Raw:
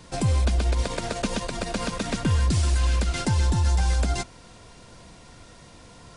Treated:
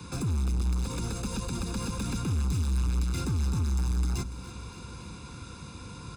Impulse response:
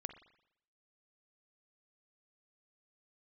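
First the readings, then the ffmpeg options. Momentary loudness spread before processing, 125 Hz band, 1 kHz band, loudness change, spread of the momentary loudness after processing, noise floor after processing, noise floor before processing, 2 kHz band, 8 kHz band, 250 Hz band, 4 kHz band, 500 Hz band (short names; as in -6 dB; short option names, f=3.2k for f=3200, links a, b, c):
7 LU, -5.0 dB, -9.5 dB, -5.5 dB, 15 LU, -44 dBFS, -49 dBFS, -11.0 dB, -5.5 dB, -3.5 dB, -8.5 dB, -10.5 dB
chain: -filter_complex "[0:a]highpass=f=49:w=0.5412,highpass=f=49:w=1.3066,equalizer=f=530:t=o:w=0.24:g=5.5,acrossover=split=91|530|5100[a][b][c][d];[a]acompressor=threshold=-28dB:ratio=4[e];[b]acompressor=threshold=-34dB:ratio=4[f];[c]acompressor=threshold=-43dB:ratio=4[g];[d]acompressor=threshold=-42dB:ratio=4[h];[e][f][g][h]amix=inputs=4:normalize=0,asoftclip=type=hard:threshold=-33.5dB,lowshelf=f=420:g=3,aecho=1:1:0.8:0.86,aecho=1:1:287|574|861|1148|1435|1722:0.2|0.11|0.0604|0.0332|0.0183|0.01"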